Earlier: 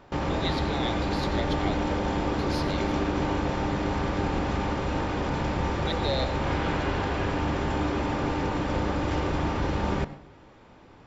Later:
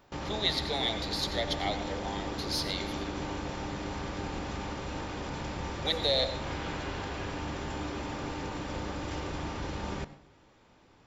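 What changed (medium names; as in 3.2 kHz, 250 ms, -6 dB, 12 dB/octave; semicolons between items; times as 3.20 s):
background -9.5 dB; master: add treble shelf 3.7 kHz +11.5 dB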